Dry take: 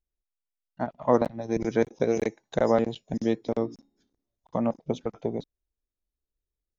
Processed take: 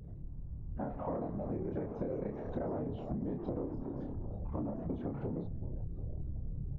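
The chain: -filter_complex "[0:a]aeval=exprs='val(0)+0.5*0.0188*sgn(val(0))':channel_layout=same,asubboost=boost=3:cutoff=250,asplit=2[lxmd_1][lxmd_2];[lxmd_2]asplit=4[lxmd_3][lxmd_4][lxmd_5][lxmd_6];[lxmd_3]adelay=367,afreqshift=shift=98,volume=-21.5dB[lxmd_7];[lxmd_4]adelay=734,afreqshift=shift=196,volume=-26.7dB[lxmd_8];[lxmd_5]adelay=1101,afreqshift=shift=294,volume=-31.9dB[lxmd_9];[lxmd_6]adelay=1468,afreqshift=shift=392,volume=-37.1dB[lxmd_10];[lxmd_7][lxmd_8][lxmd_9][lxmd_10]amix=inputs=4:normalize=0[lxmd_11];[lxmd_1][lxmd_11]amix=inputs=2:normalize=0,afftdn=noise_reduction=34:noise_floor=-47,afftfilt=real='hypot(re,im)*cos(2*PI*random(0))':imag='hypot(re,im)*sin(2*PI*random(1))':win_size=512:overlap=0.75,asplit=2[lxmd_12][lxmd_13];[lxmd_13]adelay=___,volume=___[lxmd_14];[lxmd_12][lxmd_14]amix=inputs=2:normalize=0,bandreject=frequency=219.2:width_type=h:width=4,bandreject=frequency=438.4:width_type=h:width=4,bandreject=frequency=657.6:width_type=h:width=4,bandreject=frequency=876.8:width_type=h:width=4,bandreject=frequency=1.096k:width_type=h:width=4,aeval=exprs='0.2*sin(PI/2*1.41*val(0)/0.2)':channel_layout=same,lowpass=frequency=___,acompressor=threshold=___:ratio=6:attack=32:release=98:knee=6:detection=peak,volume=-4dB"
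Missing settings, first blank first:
29, -3dB, 1k, -34dB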